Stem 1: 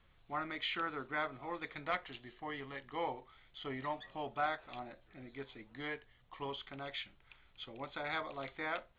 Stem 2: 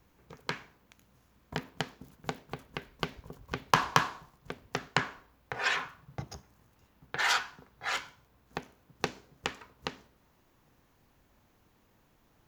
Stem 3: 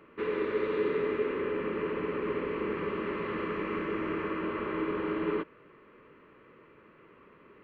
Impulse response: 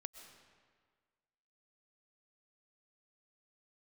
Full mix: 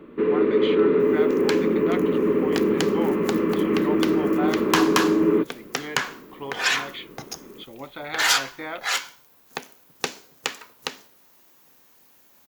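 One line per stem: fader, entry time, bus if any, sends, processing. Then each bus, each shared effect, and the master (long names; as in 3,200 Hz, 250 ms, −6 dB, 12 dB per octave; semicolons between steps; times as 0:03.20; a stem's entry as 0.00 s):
+0.5 dB, 0.00 s, no send, high-shelf EQ 3,800 Hz +11.5 dB
+2.5 dB, 1.00 s, no send, spectral tilt +4.5 dB per octave
+0.5 dB, 0.00 s, no send, parametric band 240 Hz +7.5 dB 1.4 octaves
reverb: not used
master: parametric band 300 Hz +8.5 dB 2.9 octaves; soft clipping −9 dBFS, distortion −17 dB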